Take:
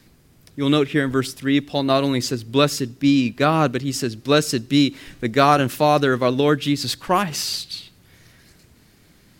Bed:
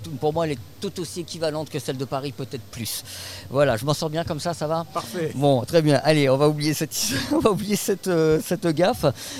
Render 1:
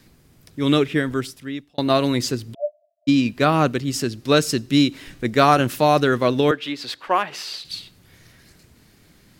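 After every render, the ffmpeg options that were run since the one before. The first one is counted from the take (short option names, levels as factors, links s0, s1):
-filter_complex "[0:a]asplit=3[s0][s1][s2];[s0]afade=t=out:st=2.53:d=0.02[s3];[s1]asuperpass=centerf=640:order=12:qfactor=5.9,afade=t=in:st=2.53:d=0.02,afade=t=out:st=3.07:d=0.02[s4];[s2]afade=t=in:st=3.07:d=0.02[s5];[s3][s4][s5]amix=inputs=3:normalize=0,asettb=1/sr,asplit=3[s6][s7][s8];[s6]atrim=end=6.514[s9];[s7]atrim=start=6.51:end=7.65,asetpts=PTS-STARTPTS,afade=t=in:d=0.004:c=qsin,afade=t=out:st=1.136:d=0.004:c=qsin,acrossover=split=350 4000:gain=0.1 1 0.2[s10][s11][s12];[s10][s11][s12]amix=inputs=3:normalize=0[s13];[s8]atrim=start=7.646[s14];[s9][s13]acrossfade=d=0.004:c1=hsin:c2=qsin[s15];[s15][s14]acrossfade=d=0.004:c1=qsin:c2=hsin,asplit=2[s16][s17];[s16]atrim=end=1.78,asetpts=PTS-STARTPTS,afade=t=out:st=0.86:d=0.92[s18];[s17]atrim=start=1.78,asetpts=PTS-STARTPTS,afade=t=in:d=0.004:c=hsin[s19];[s18][s19]concat=n=2:v=0:a=1"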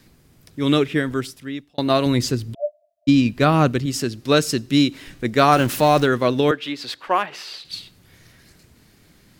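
-filter_complex "[0:a]asettb=1/sr,asplit=3[s0][s1][s2];[s0]atrim=end=2.064[s3];[s1]atrim=start=2.06:end=3.86,asetpts=PTS-STARTPTS,afade=t=in:d=0.004:c=qsin,afade=t=out:st=1.796:d=0.004:c=qsin,lowshelf=f=130:g=10[s4];[s2]atrim=start=3.856[s5];[s3][s4]acrossfade=d=0.004:c1=hsin:c2=qsin[s6];[s6][s5]acrossfade=d=0.004:c1=qsin:c2=hsin,asettb=1/sr,asplit=3[s7][s8][s9];[s7]atrim=end=5.524[s10];[s8]atrim=start=5.52:end=6.06,asetpts=PTS-STARTPTS,afade=t=in:d=0.004:c=qsin,afade=t=out:st=0.536:d=0.004:c=qsin,aeval=exprs='val(0)+0.5*0.0422*sgn(val(0))':c=same[s11];[s9]atrim=start=6.056[s12];[s10][s11]acrossfade=d=0.004:c1=hsin:c2=qsin[s13];[s13][s12]acrossfade=d=0.004:c1=qsin:c2=hsin,asettb=1/sr,asplit=3[s14][s15][s16];[s14]atrim=end=7.264[s17];[s15]atrim=start=7.26:end=7.73,asetpts=PTS-STARTPTS,afade=t=in:d=0.004:c=qsin,afade=t=out:st=0.466:d=0.004:c=qsin,bass=f=250:g=-4,treble=f=4000:g=-6[s18];[s16]atrim=start=7.726[s19];[s17][s18]acrossfade=d=0.004:c1=hsin:c2=qsin[s20];[s20][s19]acrossfade=d=0.004:c1=qsin:c2=hsin"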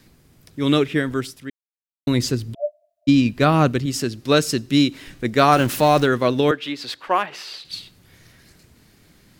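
-filter_complex "[0:a]asplit=3[s0][s1][s2];[s0]atrim=end=1.5,asetpts=PTS-STARTPTS,afade=t=out:st=1.496:d=0.004:c=hsin[s3];[s1]atrim=start=1.5:end=2.07,asetpts=PTS-STARTPTS,volume=0[s4];[s2]atrim=start=2.07,asetpts=PTS-STARTPTS,afade=t=in:d=0.004:c=hsin[s5];[s3][s4][s5]concat=n=3:v=0:a=1"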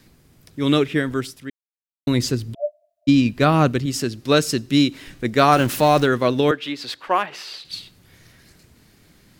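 -af anull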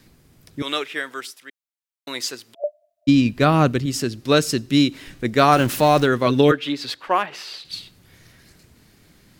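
-filter_complex "[0:a]asettb=1/sr,asplit=3[s0][s1][s2];[s0]atrim=end=0.624[s3];[s1]atrim=start=0.62:end=2.64,asetpts=PTS-STARTPTS,afade=t=in:d=0.004:c=qsin,afade=t=out:st=2.016:d=0.004:c=qsin,highpass=730[s4];[s2]atrim=start=2.636[s5];[s3][s4]acrossfade=d=0.004:c1=hsin:c2=qsin[s6];[s6][s5]acrossfade=d=0.004:c1=qsin:c2=hsin,asettb=1/sr,asplit=3[s7][s8][s9];[s7]atrim=end=6.264[s10];[s8]atrim=start=6.26:end=6.93,asetpts=PTS-STARTPTS,afade=t=in:d=0.004:c=qsin,afade=t=out:st=0.666:d=0.004:c=qsin,aecho=1:1:7.2:0.65,atrim=end_sample=29547[s11];[s9]atrim=start=6.926[s12];[s10][s11]acrossfade=d=0.004:c1=hsin:c2=qsin[s13];[s13][s12]acrossfade=d=0.004:c1=qsin:c2=hsin"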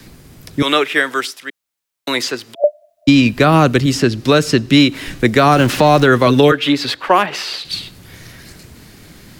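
-filter_complex "[0:a]acrossover=split=220|440|3200|6800[s0][s1][s2][s3][s4];[s0]acompressor=threshold=0.0355:ratio=4[s5];[s1]acompressor=threshold=0.0316:ratio=4[s6];[s2]acompressor=threshold=0.0794:ratio=4[s7];[s3]acompressor=threshold=0.01:ratio=4[s8];[s4]acompressor=threshold=0.00316:ratio=4[s9];[s5][s6][s7][s8][s9]amix=inputs=5:normalize=0,alimiter=level_in=4.47:limit=0.891:release=50:level=0:latency=1"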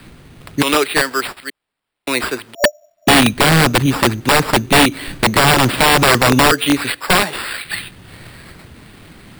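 -af "acrusher=samples=7:mix=1:aa=0.000001,aeval=exprs='(mod(1.68*val(0)+1,2)-1)/1.68':c=same"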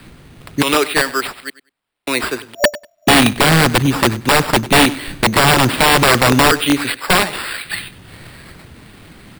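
-af "aecho=1:1:97|194:0.126|0.0201"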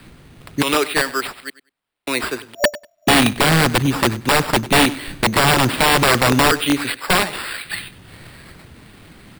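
-af "volume=0.708"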